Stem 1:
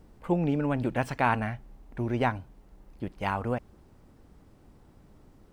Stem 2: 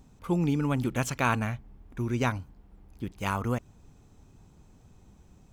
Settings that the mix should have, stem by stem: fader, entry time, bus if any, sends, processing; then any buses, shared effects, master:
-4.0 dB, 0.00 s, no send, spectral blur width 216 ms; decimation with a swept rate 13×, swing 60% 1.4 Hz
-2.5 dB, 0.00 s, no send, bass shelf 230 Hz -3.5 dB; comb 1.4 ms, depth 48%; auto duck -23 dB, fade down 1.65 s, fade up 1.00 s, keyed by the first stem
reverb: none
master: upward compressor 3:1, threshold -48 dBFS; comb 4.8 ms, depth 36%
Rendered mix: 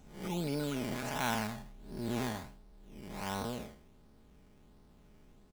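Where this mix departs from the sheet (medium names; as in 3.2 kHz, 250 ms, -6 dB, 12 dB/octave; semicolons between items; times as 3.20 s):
stem 2: polarity flipped; master: missing upward compressor 3:1, threshold -48 dBFS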